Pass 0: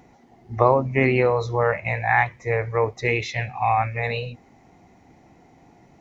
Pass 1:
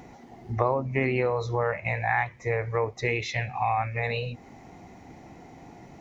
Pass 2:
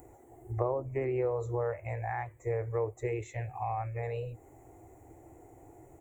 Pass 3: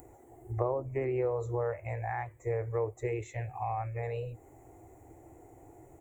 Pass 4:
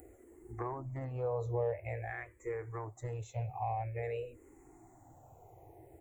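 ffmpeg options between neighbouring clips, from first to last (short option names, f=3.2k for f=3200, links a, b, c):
-af "acompressor=threshold=-37dB:ratio=2,volume=5.5dB"
-af "firequalizer=gain_entry='entry(110,0);entry(200,-25);entry(320,1);entry(950,-8);entry(5000,-28);entry(7700,11)':delay=0.05:min_phase=1,volume=-3dB"
-af "acompressor=mode=upward:threshold=-54dB:ratio=2.5"
-filter_complex "[0:a]asoftclip=type=tanh:threshold=-18dB,asplit=2[a][b];[b]afreqshift=-0.49[c];[a][c]amix=inputs=2:normalize=1"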